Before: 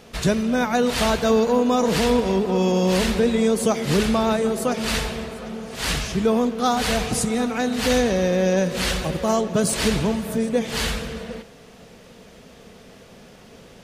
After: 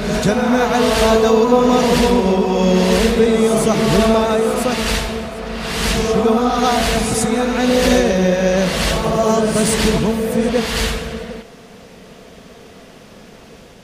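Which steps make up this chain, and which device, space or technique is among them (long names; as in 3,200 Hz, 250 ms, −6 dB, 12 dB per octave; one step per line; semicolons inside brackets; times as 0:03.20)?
reverse reverb (reversed playback; convolution reverb RT60 1.7 s, pre-delay 85 ms, DRR 0.5 dB; reversed playback)
level +3.5 dB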